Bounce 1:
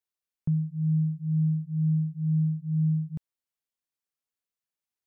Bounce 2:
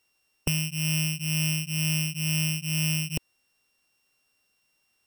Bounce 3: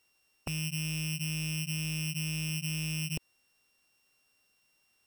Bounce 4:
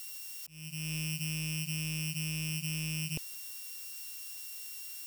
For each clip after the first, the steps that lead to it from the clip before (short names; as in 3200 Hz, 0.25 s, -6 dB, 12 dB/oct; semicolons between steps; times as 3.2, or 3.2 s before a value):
sample sorter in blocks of 16 samples; spectral compressor 2:1; gain +7.5 dB
one-sided fold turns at -22.5 dBFS; limiter -24 dBFS, peak gain reduction 10 dB
switching spikes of -35 dBFS; auto swell 0.471 s; gain -2 dB